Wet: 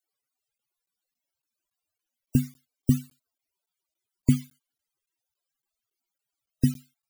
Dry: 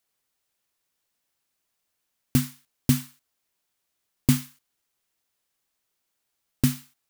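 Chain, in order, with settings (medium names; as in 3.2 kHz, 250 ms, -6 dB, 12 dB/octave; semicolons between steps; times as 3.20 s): band-stop 1.8 kHz, Q 30; loudest bins only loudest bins 64; crackling interface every 0.28 s, samples 512, zero, from 0.58 s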